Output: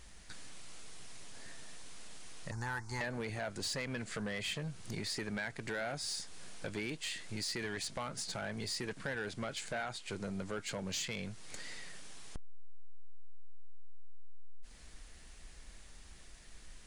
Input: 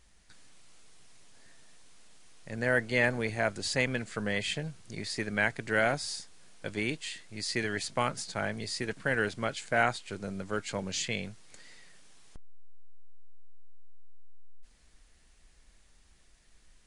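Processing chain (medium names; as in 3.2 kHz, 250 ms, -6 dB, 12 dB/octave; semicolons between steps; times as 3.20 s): 2.51–3.01 s: FFT filter 100 Hz 0 dB, 180 Hz -17 dB, 360 Hz -12 dB, 600 Hz -28 dB, 870 Hz +8 dB, 3 kHz -25 dB, 5.5 kHz +4 dB, 10 kHz -3 dB; in parallel at +0.5 dB: peak limiter -22 dBFS, peak gain reduction 11 dB; on the sum: compression 3:1, threshold -38 dBFS, peak gain reduction 15 dB; saturation -32.5 dBFS, distortion -14 dB; trim +1.5 dB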